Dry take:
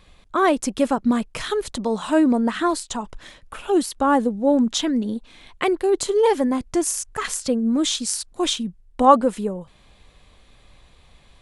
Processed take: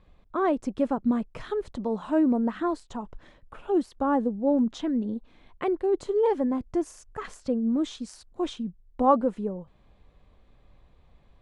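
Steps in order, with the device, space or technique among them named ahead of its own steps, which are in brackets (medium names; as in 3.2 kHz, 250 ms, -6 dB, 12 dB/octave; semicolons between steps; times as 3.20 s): through cloth (low-pass 7.9 kHz 12 dB/octave; treble shelf 1.9 kHz -17 dB); trim -4.5 dB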